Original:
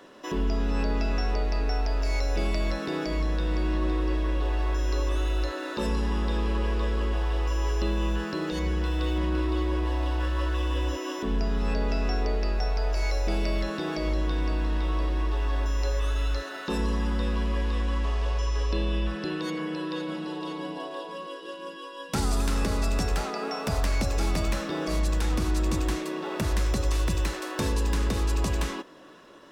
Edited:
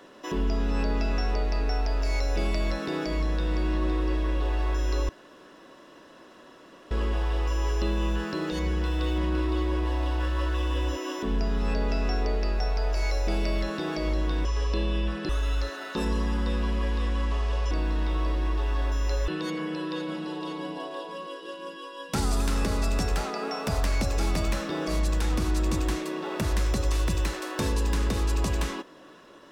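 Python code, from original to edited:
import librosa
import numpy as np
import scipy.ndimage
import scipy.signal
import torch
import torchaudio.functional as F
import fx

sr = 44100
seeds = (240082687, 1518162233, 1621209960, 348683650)

y = fx.edit(x, sr, fx.room_tone_fill(start_s=5.09, length_s=1.82),
    fx.swap(start_s=14.45, length_s=1.57, other_s=18.44, other_length_s=0.84), tone=tone)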